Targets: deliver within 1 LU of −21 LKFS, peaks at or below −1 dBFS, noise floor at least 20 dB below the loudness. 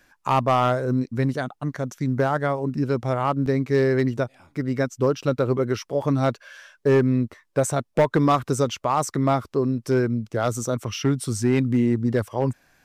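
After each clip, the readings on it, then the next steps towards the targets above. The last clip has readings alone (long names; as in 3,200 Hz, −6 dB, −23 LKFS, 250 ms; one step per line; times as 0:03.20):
share of clipped samples 0.5%; peaks flattened at −12.0 dBFS; number of dropouts 2; longest dropout 2.4 ms; integrated loudness −23.5 LKFS; sample peak −12.0 dBFS; target loudness −21.0 LKFS
→ clipped peaks rebuilt −12 dBFS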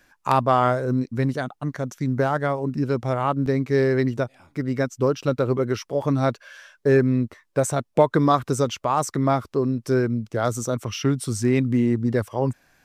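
share of clipped samples 0.0%; number of dropouts 2; longest dropout 2.4 ms
→ repair the gap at 0:03.46/0:06.02, 2.4 ms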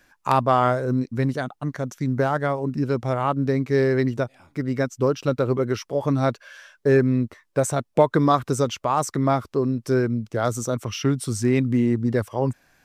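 number of dropouts 0; integrated loudness −23.0 LKFS; sample peak −3.5 dBFS; target loudness −21.0 LKFS
→ level +2 dB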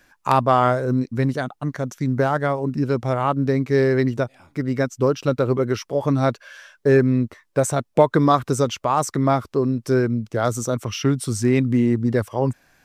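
integrated loudness −21.0 LKFS; sample peak −1.5 dBFS; background noise floor −67 dBFS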